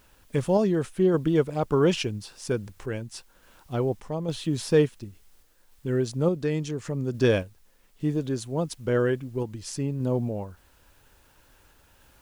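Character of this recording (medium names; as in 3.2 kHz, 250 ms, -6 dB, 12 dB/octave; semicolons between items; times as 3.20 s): a quantiser's noise floor 10-bit, dither triangular; random-step tremolo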